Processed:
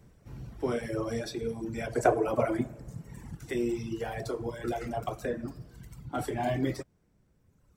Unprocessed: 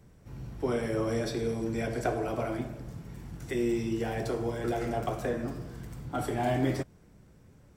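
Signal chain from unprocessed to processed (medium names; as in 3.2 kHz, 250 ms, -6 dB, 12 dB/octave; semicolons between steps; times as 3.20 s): reverb removal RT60 1.9 s; 1.95–3.35 s: graphic EQ 125/250/500/1000/2000/4000/8000 Hz +4/+4/+8/+5/+5/-4/+8 dB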